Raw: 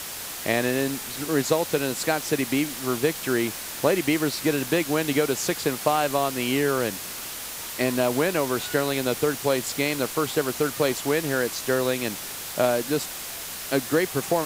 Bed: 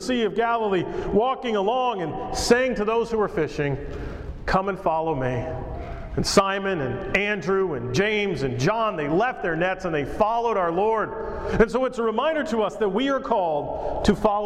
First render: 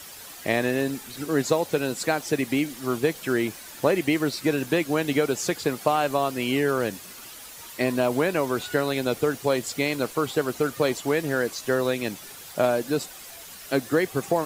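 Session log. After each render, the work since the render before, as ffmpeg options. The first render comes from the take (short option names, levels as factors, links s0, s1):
-af "afftdn=nr=10:nf=-35"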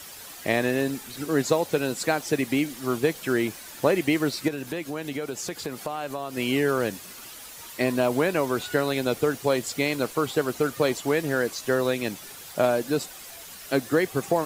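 -filter_complex "[0:a]asettb=1/sr,asplit=3[s0][s1][s2];[s0]atrim=end=4.484[s3];[s1]atrim=start=4.48:end=6.37,asetpts=PTS-STARTPTS,afade=t=in:d=0.004:c=qsin,afade=t=out:st=1.886:d=0.004:c=qsin,acompressor=threshold=0.0282:ratio=2.5:attack=3.2:release=140:knee=1:detection=peak[s4];[s2]atrim=start=6.366[s5];[s3][s4]acrossfade=d=0.004:c1=hsin:c2=qsin[s6];[s6][s5]acrossfade=d=0.004:c1=qsin:c2=hsin"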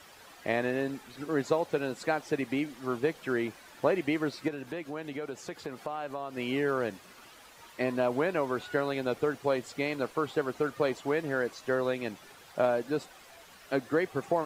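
-af "lowpass=f=1200:p=1,lowshelf=f=490:g=-8.5"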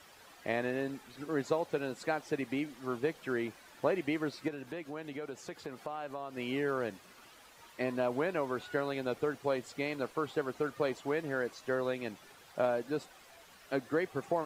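-af "volume=0.631"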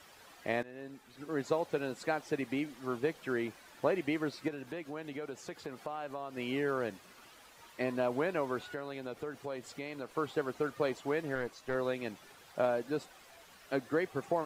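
-filter_complex "[0:a]asettb=1/sr,asplit=3[s0][s1][s2];[s0]atrim=end=8.634[s3];[s1]atrim=start=8.63:end=10.15,asetpts=PTS-STARTPTS,afade=t=in:d=0.004:c=qsin,afade=t=out:st=1.516:d=0.004:c=qsin,acompressor=threshold=0.00891:ratio=2:attack=3.2:release=140:knee=1:detection=peak[s4];[s2]atrim=start=10.146[s5];[s3][s4]acrossfade=d=0.004:c1=hsin:c2=qsin[s6];[s6][s5]acrossfade=d=0.004:c1=qsin:c2=hsin,asettb=1/sr,asplit=3[s7][s8][s9];[s7]atrim=end=11.354[s10];[s8]atrim=start=11.35:end=11.75,asetpts=PTS-STARTPTS,afade=t=in:d=0.004:c=qsin,afade=t=out:st=0.396:d=0.004:c=qsin,aeval=exprs='(tanh(17.8*val(0)+0.6)-tanh(0.6))/17.8':c=same[s11];[s9]atrim=start=11.746[s12];[s10][s11]acrossfade=d=0.004:c1=hsin:c2=qsin[s13];[s13][s12]acrossfade=d=0.004:c1=qsin:c2=hsin,asplit=2[s14][s15];[s14]atrim=end=0.63,asetpts=PTS-STARTPTS,afade=t=out:st=0.626:d=0.004:c=hsin:silence=0.105925[s16];[s15]atrim=start=0.63,asetpts=PTS-STARTPTS,afade=t=in:d=0.93:silence=0.105925[s17];[s16][s17]concat=n=2:v=0:a=1"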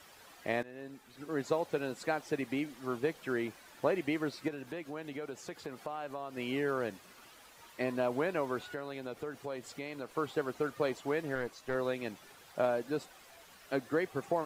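-af "highshelf=f=9300:g=3.5"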